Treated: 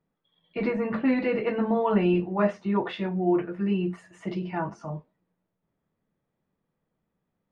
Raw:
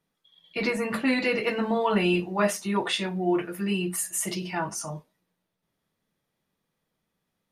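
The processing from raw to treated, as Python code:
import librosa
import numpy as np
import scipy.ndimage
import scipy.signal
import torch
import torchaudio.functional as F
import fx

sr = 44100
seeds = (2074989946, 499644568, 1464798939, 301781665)

y = fx.spacing_loss(x, sr, db_at_10k=45)
y = F.gain(torch.from_numpy(y), 3.0).numpy()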